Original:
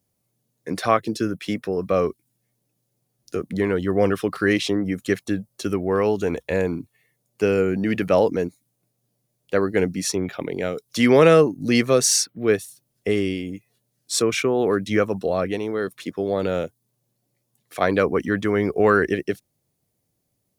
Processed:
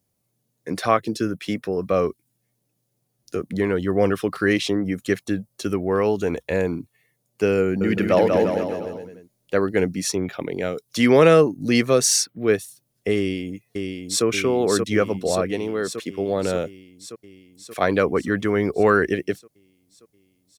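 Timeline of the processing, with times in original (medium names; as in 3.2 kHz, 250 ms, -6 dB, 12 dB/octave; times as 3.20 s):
7.62–9.69 s: bouncing-ball echo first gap 190 ms, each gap 0.85×, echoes 6
13.17–14.25 s: echo throw 580 ms, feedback 70%, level -4.5 dB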